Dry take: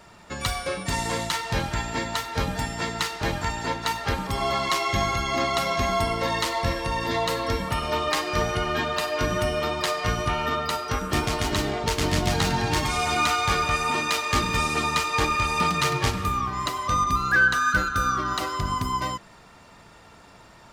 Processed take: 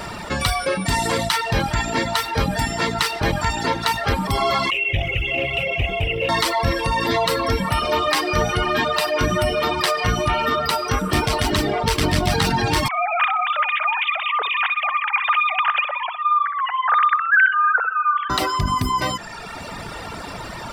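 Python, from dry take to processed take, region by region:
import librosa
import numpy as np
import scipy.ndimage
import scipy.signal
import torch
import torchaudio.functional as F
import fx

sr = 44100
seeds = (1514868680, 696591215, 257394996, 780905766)

y = fx.chain(x, sr, fx.curve_eq(hz=(130.0, 220.0, 500.0, 1100.0, 1700.0, 2700.0, 4200.0, 6600.0), db=(0, -17, 0, -26, -19, 9, -30, -21)),
    fx.quant_companded(bits=8),
    fx.doppler_dist(depth_ms=0.27), at=(4.7, 6.29))
y = fx.chain(y, sr, fx.sine_speech(),
    fx.echo_feedback(ms=63, feedback_pct=32, wet_db=-8.0), at=(12.88, 18.3))
y = fx.notch(y, sr, hz=6700.0, q=6.0)
y = fx.dereverb_blind(y, sr, rt60_s=1.0)
y = fx.env_flatten(y, sr, amount_pct=50)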